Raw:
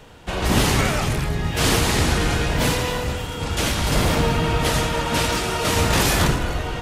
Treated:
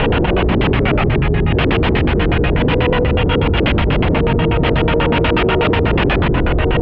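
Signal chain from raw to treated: LFO low-pass square 8.2 Hz 400–2900 Hz; air absorption 430 m; fast leveller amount 100%

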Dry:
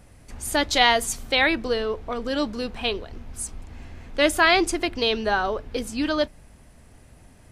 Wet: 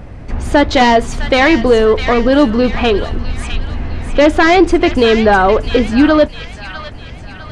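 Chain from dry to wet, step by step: in parallel at -1.5 dB: compressor, threshold -27 dBFS, peak gain reduction 13.5 dB; on the sum: sine folder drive 11 dB, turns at -1 dBFS; tape spacing loss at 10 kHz 29 dB; thin delay 0.655 s, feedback 46%, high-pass 1500 Hz, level -7 dB

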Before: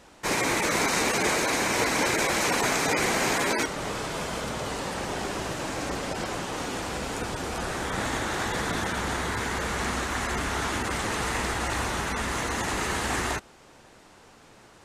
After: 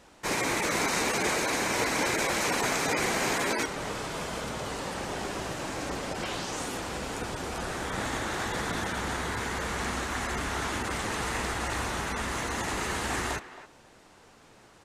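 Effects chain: 6.22–6.76 bell 2400 Hz -> 13000 Hz +8.5 dB 0.77 oct; speakerphone echo 0.27 s, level -14 dB; gain -3 dB

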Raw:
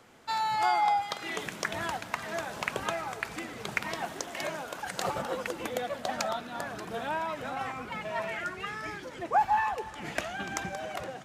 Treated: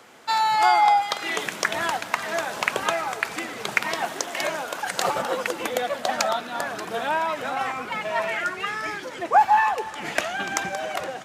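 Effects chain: HPF 380 Hz 6 dB/oct; gain +9 dB

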